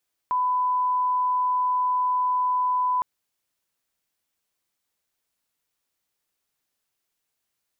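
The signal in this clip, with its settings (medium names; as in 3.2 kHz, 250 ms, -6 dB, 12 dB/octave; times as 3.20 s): line-up tone -20 dBFS 2.71 s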